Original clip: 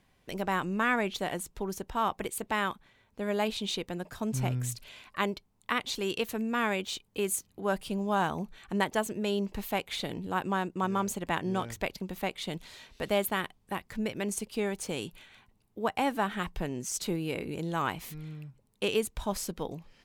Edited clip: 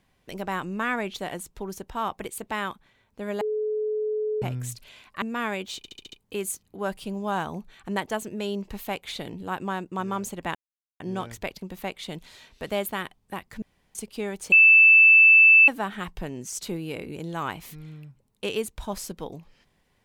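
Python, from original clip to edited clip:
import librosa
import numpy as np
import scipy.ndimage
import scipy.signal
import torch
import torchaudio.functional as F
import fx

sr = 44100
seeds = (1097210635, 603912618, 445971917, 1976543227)

y = fx.edit(x, sr, fx.bleep(start_s=3.41, length_s=1.01, hz=428.0, db=-24.0),
    fx.cut(start_s=5.22, length_s=1.19),
    fx.stutter(start_s=6.96, slice_s=0.07, count=6),
    fx.insert_silence(at_s=11.39, length_s=0.45),
    fx.room_tone_fill(start_s=14.01, length_s=0.33),
    fx.bleep(start_s=14.91, length_s=1.16, hz=2640.0, db=-10.5), tone=tone)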